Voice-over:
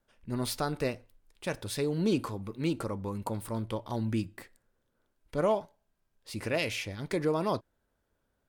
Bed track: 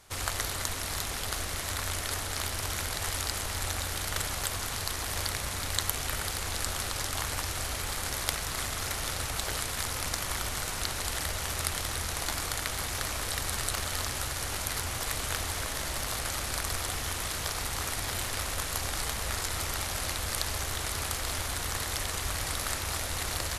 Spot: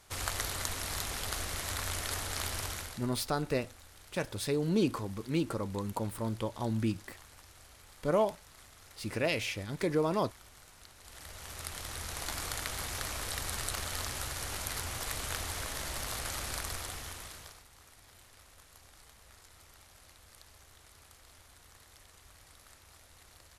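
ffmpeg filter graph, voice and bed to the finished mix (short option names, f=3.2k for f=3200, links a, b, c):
-filter_complex "[0:a]adelay=2700,volume=-0.5dB[a];[1:a]volume=15dB,afade=t=out:st=2.58:d=0.48:silence=0.105925,afade=t=in:st=11:d=1.46:silence=0.125893,afade=t=out:st=16.5:d=1.14:silence=0.0944061[b];[a][b]amix=inputs=2:normalize=0"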